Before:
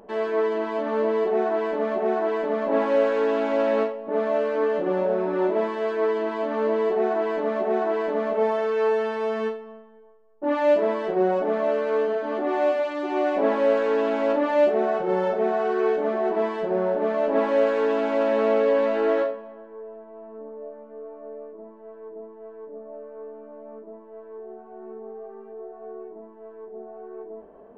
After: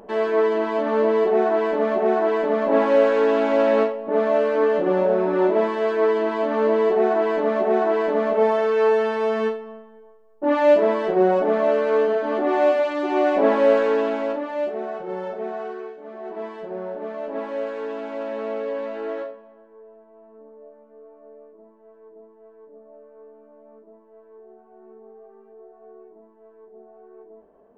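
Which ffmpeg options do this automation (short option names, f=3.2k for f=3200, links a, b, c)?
-af "volume=14.5dB,afade=t=out:st=13.75:d=0.7:silence=0.298538,afade=t=out:st=15.63:d=0.32:silence=0.266073,afade=t=in:st=15.95:d=0.5:silence=0.298538"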